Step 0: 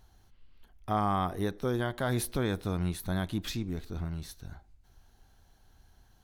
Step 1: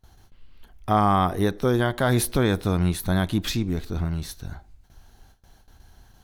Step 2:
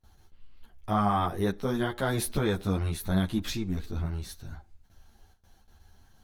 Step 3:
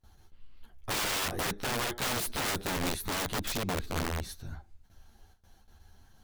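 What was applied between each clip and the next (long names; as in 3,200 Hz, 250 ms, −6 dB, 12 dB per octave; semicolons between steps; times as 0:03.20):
noise gate with hold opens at −51 dBFS; level +9 dB
string-ensemble chorus; level −3 dB
wrap-around overflow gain 26.5 dB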